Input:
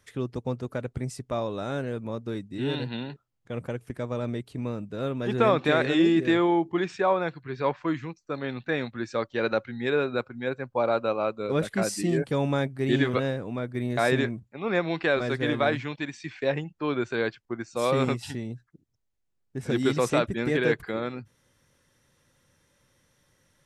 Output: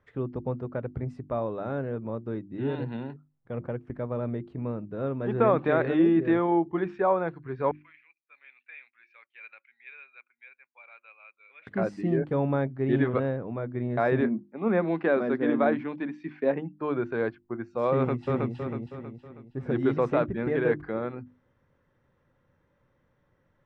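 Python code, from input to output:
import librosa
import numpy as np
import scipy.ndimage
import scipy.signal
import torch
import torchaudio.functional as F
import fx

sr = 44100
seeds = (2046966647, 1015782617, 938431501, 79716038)

y = fx.ladder_bandpass(x, sr, hz=2500.0, resonance_pct=80, at=(7.71, 11.67))
y = fx.low_shelf_res(y, sr, hz=140.0, db=-13.5, q=3.0, at=(14.21, 16.81))
y = fx.echo_throw(y, sr, start_s=17.95, length_s=0.59, ms=320, feedback_pct=45, wet_db=-1.5)
y = scipy.signal.sosfilt(scipy.signal.butter(2, 1400.0, 'lowpass', fs=sr, output='sos'), y)
y = fx.hum_notches(y, sr, base_hz=50, count=7)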